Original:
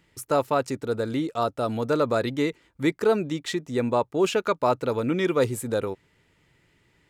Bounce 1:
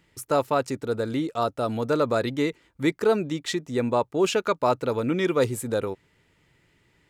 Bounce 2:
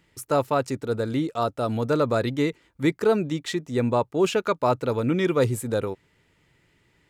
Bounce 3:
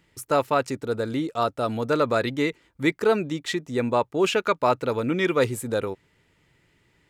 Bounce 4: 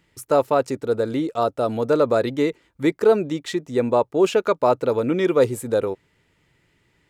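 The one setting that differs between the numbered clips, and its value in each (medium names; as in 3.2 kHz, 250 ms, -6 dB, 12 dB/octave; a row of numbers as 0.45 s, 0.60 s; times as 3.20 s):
dynamic bell, frequency: 5.7 kHz, 110 Hz, 2.2 kHz, 500 Hz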